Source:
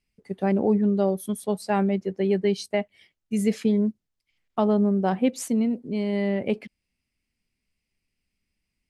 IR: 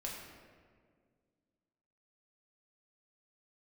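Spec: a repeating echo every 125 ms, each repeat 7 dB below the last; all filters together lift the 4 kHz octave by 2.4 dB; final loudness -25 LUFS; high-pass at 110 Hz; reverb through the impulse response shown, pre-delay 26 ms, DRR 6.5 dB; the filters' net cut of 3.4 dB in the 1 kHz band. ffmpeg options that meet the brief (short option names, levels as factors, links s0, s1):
-filter_complex "[0:a]highpass=110,equalizer=f=1000:t=o:g=-5,equalizer=f=4000:t=o:g=3.5,aecho=1:1:125|250|375|500|625:0.447|0.201|0.0905|0.0407|0.0183,asplit=2[s0][s1];[1:a]atrim=start_sample=2205,adelay=26[s2];[s1][s2]afir=irnorm=-1:irlink=0,volume=0.473[s3];[s0][s3]amix=inputs=2:normalize=0,volume=0.891"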